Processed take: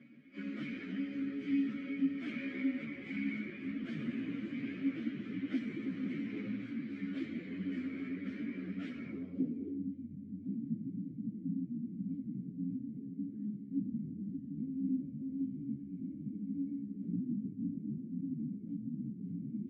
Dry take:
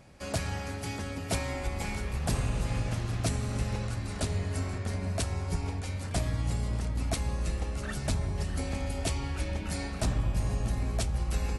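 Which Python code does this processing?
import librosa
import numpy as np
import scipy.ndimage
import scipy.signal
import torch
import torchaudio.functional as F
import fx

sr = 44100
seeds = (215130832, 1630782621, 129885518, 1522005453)

y = np.minimum(x, 2.0 * 10.0 ** (-32.5 / 20.0) - x)
y = scipy.signal.sosfilt(scipy.signal.butter(4, 140.0, 'highpass', fs=sr, output='sos'), y)
y = fx.bass_treble(y, sr, bass_db=5, treble_db=14)
y = 10.0 ** (-22.5 / 20.0) * np.tanh(y / 10.0 ** (-22.5 / 20.0))
y = fx.filter_sweep_lowpass(y, sr, from_hz=1500.0, to_hz=190.0, start_s=5.29, end_s=5.86, q=1.6)
y = fx.stretch_vocoder_free(y, sr, factor=1.7)
y = fx.vowel_filter(y, sr, vowel='i')
y = fx.ensemble(y, sr)
y = y * librosa.db_to_amplitude(14.0)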